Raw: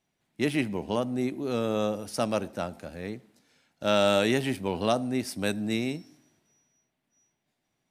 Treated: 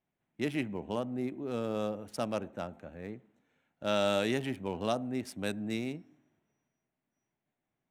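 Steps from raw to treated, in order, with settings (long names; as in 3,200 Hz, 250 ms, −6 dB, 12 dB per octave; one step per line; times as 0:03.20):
adaptive Wiener filter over 9 samples
level −6 dB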